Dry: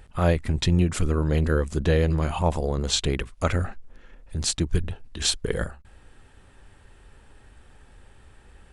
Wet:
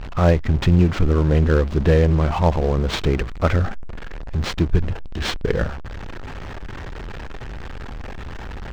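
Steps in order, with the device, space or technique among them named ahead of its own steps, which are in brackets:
early CD player with a faulty converter (converter with a step at zero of −31 dBFS; converter with an unsteady clock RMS 0.051 ms)
high-frequency loss of the air 170 metres
level +5 dB

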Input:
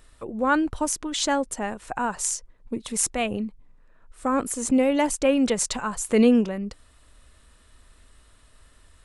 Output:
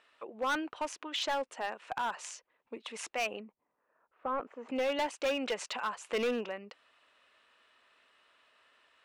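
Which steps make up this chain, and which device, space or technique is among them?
megaphone (band-pass filter 570–3,200 Hz; parametric band 2,700 Hz +6 dB 0.45 octaves; hard clipping −23.5 dBFS, distortion −9 dB)
0:03.40–0:04.69: low-pass filter 1,200 Hz 12 dB per octave
level −3.5 dB

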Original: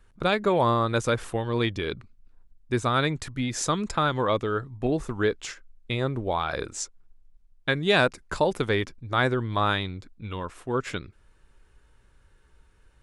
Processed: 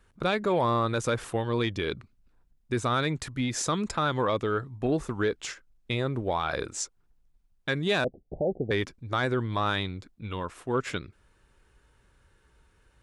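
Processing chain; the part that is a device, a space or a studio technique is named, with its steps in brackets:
soft clipper into limiter (soft clipping −11.5 dBFS, distortion −23 dB; brickwall limiter −17.5 dBFS, peak gain reduction 5 dB)
high-pass filter 54 Hz 6 dB per octave
0:08.04–0:08.71: Butterworth low-pass 760 Hz 96 dB per octave

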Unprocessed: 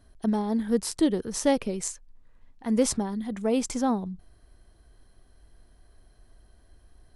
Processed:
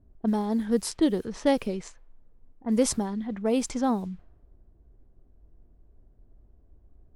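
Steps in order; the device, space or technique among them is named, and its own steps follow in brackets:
cassette deck with a dynamic noise filter (white noise bed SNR 32 dB; low-pass that shuts in the quiet parts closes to 370 Hz, open at −22.5 dBFS)

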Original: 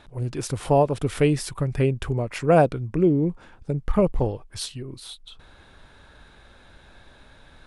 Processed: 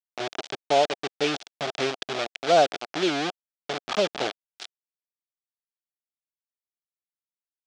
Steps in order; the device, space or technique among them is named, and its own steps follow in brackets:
0:00.69–0:01.24: elliptic low-pass filter 1,400 Hz
hand-held game console (bit reduction 4 bits; loudspeaker in its box 440–5,900 Hz, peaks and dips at 490 Hz −5 dB, 700 Hz +4 dB, 1,000 Hz −8 dB, 1,900 Hz −3 dB, 3,400 Hz +4 dB)

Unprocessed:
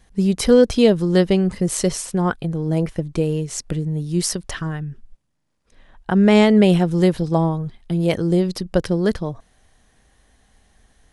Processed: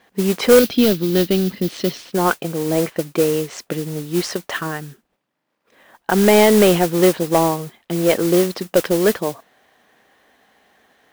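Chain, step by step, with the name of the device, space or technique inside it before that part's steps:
carbon microphone (band-pass filter 330–3,100 Hz; soft clipping −11.5 dBFS, distortion −15 dB; noise that follows the level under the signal 13 dB)
0:00.59–0:02.13: graphic EQ with 10 bands 250 Hz +5 dB, 500 Hz −8 dB, 1,000 Hz −10 dB, 2,000 Hz −5 dB, 4,000 Hz +5 dB, 8,000 Hz −11 dB
level +7.5 dB

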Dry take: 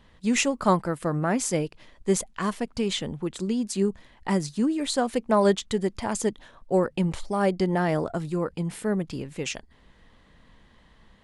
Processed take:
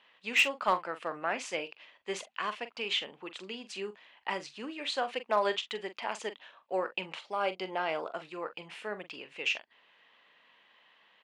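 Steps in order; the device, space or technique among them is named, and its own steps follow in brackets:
megaphone (band-pass filter 650–3,800 Hz; parametric band 2,700 Hz +10.5 dB 0.56 octaves; hard clipping −14 dBFS, distortion −20 dB; double-tracking delay 43 ms −12 dB)
0:07.35–0:08.11: notch filter 1,800 Hz, Q 5.4
level −3.5 dB

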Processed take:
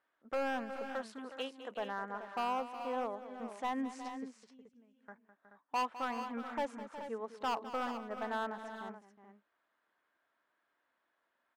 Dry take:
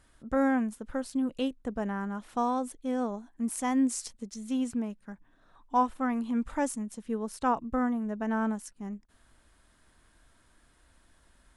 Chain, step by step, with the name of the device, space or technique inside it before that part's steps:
0:00.88–0:01.71: RIAA equalisation recording
walkie-talkie (band-pass filter 510–2,300 Hz; hard clipping −29 dBFS, distortion −7 dB; noise gate −58 dBFS, range −10 dB)
0:04.26–0:04.97: guitar amp tone stack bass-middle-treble 10-0-1
multi-tap delay 206/365/429 ms −13.5/−12/−10.5 dB
level −1 dB

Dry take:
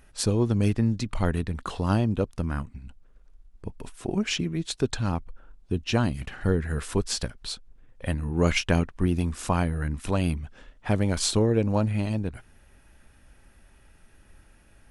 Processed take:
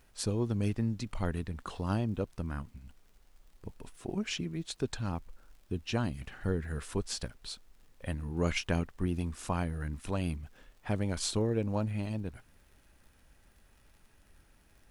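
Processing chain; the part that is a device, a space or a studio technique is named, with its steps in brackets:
vinyl LP (surface crackle; pink noise bed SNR 36 dB)
level −8 dB

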